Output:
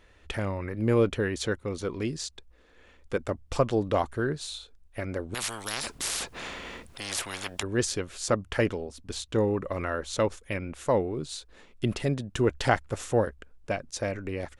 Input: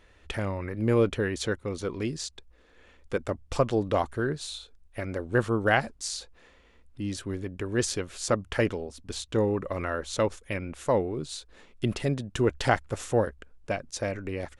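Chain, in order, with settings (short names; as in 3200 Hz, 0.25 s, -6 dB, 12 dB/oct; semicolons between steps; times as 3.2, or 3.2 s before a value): 5.34–7.63 spectral compressor 10:1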